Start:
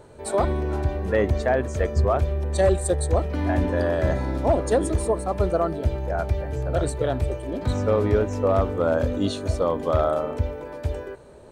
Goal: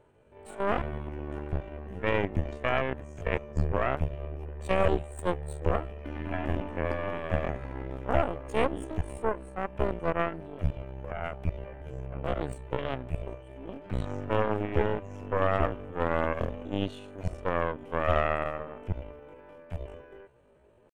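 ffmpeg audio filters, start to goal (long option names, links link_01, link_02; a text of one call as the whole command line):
ffmpeg -i in.wav -af "aeval=exprs='0.299*(cos(1*acos(clip(val(0)/0.299,-1,1)))-cos(1*PI/2))+0.15*(cos(2*acos(clip(val(0)/0.299,-1,1)))-cos(2*PI/2))+0.0531*(cos(3*acos(clip(val(0)/0.299,-1,1)))-cos(3*PI/2))':channel_layout=same,highshelf=frequency=3500:width_type=q:width=3:gain=-6,atempo=0.55,volume=-7.5dB" out.wav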